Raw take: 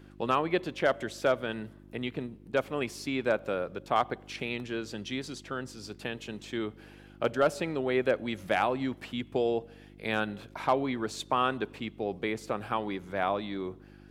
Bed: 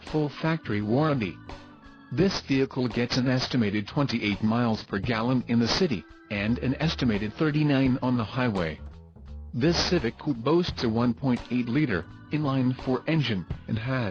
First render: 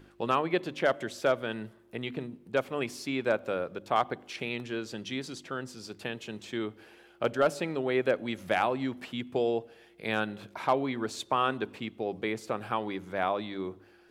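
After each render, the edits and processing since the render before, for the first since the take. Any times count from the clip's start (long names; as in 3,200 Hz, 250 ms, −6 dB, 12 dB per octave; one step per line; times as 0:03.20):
hum removal 50 Hz, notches 6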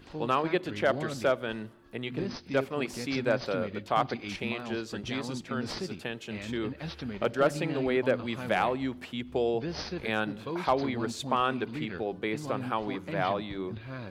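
mix in bed −12.5 dB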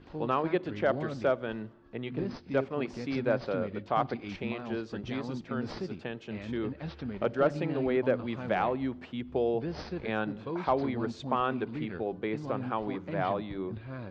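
low-pass filter 6,200 Hz 24 dB per octave
high-shelf EQ 2,200 Hz −11 dB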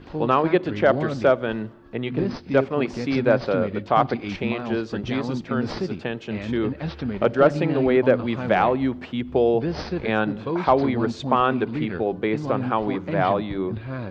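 level +9.5 dB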